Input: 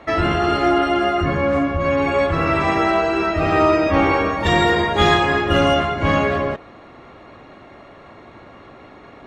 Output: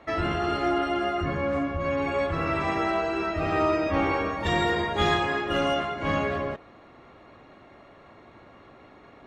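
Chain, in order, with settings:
0:05.27–0:06.07: parametric band 77 Hz −9.5 dB 1.7 octaves
level −8.5 dB

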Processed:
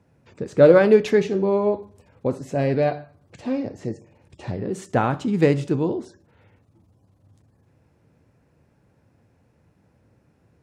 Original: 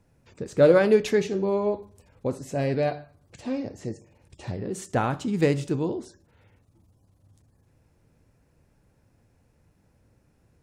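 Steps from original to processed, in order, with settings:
high-pass filter 87 Hz
high-shelf EQ 4,800 Hz −10.5 dB
level +4.5 dB

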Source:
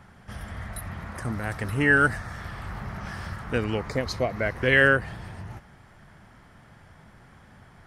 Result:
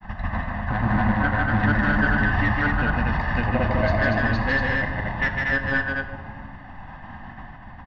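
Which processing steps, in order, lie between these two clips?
parametric band 110 Hz −7.5 dB 2.2 octaves
comb filter 1.1 ms, depth 79%
in parallel at +1 dB: downward compressor, threshold −32 dBFS, peak gain reduction 18.5 dB
on the sum: sample-and-hold tremolo 3.5 Hz
granular cloud, spray 862 ms, pitch spread up and down by 0 semitones
hard clipping −24 dBFS, distortion −6 dB
high-frequency loss of the air 390 metres
loudspeakers that aren't time-aligned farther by 53 metres −3 dB, 81 metres −3 dB
on a send at −6.5 dB: convolution reverb RT60 1.5 s, pre-delay 4 ms
on the sum: downsampling to 16,000 Hz
level +7 dB

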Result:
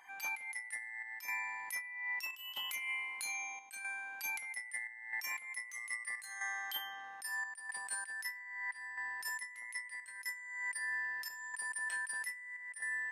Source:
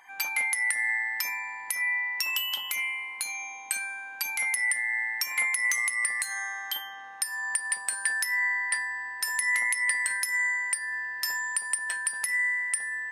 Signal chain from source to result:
compressor whose output falls as the input rises −32 dBFS, ratio −0.5
square-wave tremolo 0.78 Hz, depth 60%, duty 80%
level −8 dB

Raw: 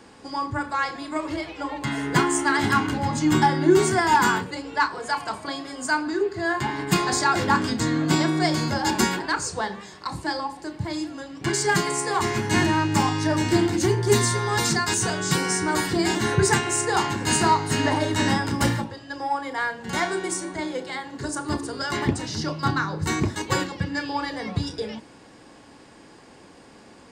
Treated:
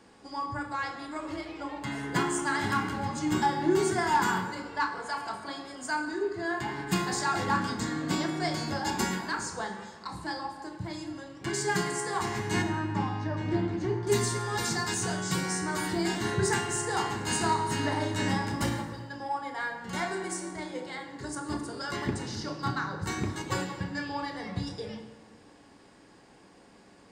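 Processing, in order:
0:12.62–0:14.07: head-to-tape spacing loss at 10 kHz 26 dB
convolution reverb RT60 1.5 s, pre-delay 3 ms, DRR 5 dB
level −8.5 dB

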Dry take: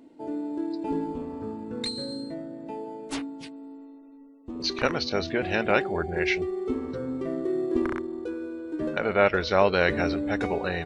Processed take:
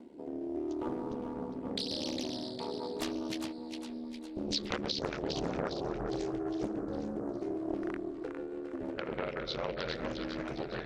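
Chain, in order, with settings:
source passing by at 0:04.14, 13 m/s, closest 18 metres
gain on a spectral selection 0:04.95–0:07.41, 1,400–4,800 Hz −20 dB
dynamic equaliser 3,900 Hz, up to +7 dB, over −55 dBFS, Q 2.4
gain on a spectral selection 0:03.22–0:04.56, 730–1,900 Hz −7 dB
in parallel at −1 dB: upward compression, threshold −33 dBFS
on the sum: ring modulation 37 Hz
rotating-speaker cabinet horn 0.8 Hz, later 6.3 Hz, at 0:01.89
downward compressor 5 to 1, threshold −32 dBFS, peak gain reduction 14 dB
on a send: echo with a time of its own for lows and highs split 650 Hz, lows 140 ms, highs 407 ms, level −5.5 dB
on the sum: highs frequency-modulated by the lows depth 0.65 ms

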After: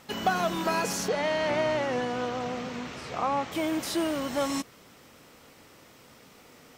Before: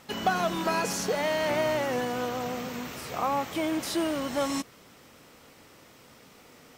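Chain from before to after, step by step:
0:01.08–0:03.52: low-pass filter 5,700 Hz 12 dB per octave

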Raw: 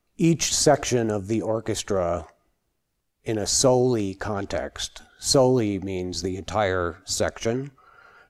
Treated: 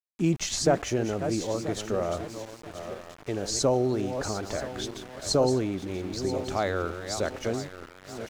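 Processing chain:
feedback delay that plays each chunk backwards 491 ms, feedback 56%, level −9 dB
centre clipping without the shift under −35 dBFS
high-shelf EQ 9,900 Hz −12 dB
level −5 dB

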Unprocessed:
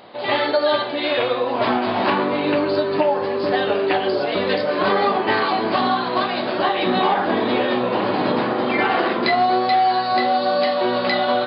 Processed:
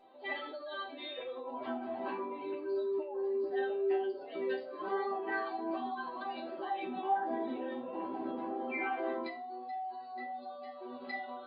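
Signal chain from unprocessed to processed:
expanding power law on the bin magnitudes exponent 1.7
speech leveller 2 s
resonators tuned to a chord C4 major, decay 0.3 s

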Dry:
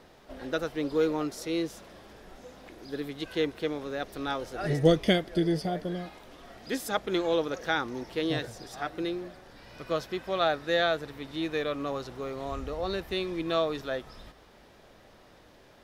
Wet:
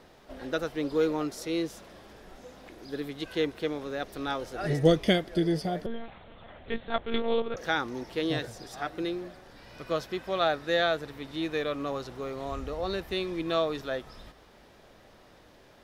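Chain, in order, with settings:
0:05.86–0:07.57: one-pitch LPC vocoder at 8 kHz 230 Hz

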